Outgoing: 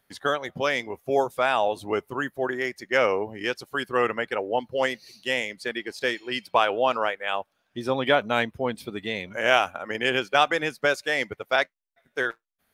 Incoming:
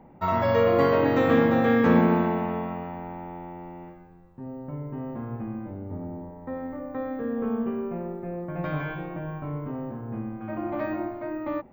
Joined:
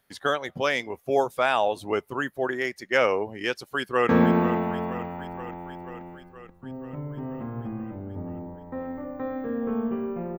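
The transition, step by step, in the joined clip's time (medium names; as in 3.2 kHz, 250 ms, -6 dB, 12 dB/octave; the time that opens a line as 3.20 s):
outgoing
3.63–4.09 s: echo throw 480 ms, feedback 70%, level -11.5 dB
4.09 s: go over to incoming from 1.84 s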